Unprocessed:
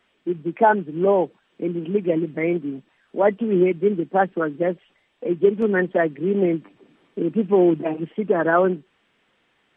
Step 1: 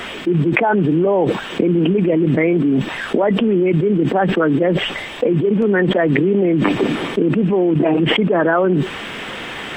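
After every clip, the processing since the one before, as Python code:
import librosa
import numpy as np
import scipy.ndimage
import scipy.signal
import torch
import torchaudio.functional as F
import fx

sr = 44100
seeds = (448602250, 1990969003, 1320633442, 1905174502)

y = fx.env_flatten(x, sr, amount_pct=100)
y = F.gain(torch.from_numpy(y), -3.0).numpy()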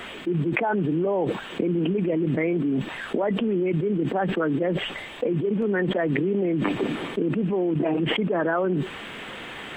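y = fx.peak_eq(x, sr, hz=5400.0, db=-8.5, octaves=0.34)
y = F.gain(torch.from_numpy(y), -8.5).numpy()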